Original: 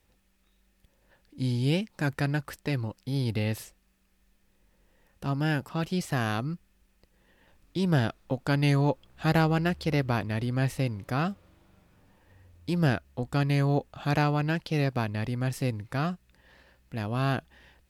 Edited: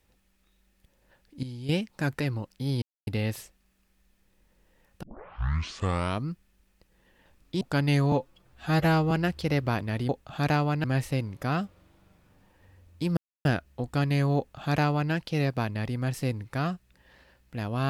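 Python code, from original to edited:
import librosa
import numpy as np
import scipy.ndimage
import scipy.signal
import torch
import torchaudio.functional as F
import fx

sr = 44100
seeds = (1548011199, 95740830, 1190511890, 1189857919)

y = fx.edit(x, sr, fx.clip_gain(start_s=1.43, length_s=0.26, db=-11.0),
    fx.cut(start_s=2.2, length_s=0.47),
    fx.insert_silence(at_s=3.29, length_s=0.25),
    fx.tape_start(start_s=5.25, length_s=1.23),
    fx.cut(start_s=7.83, length_s=0.53),
    fx.stretch_span(start_s=8.87, length_s=0.66, factor=1.5),
    fx.insert_silence(at_s=12.84, length_s=0.28),
    fx.duplicate(start_s=13.76, length_s=0.75, to_s=10.51), tone=tone)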